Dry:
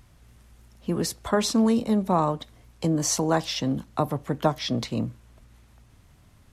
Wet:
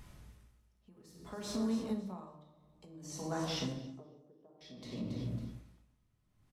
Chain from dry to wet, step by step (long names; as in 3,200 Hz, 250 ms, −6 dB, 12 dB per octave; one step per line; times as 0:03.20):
0:00.91–0:01.56: mu-law and A-law mismatch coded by mu
0:03.74–0:04.61: resonant band-pass 410 Hz, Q 2.9
rectangular room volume 420 cubic metres, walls mixed, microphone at 1.4 metres
downward compressor 5 to 1, threshold −32 dBFS, peak gain reduction 19 dB
repeating echo 277 ms, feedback 42%, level −15 dB
tremolo with a sine in dB 0.57 Hz, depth 26 dB
level −1.5 dB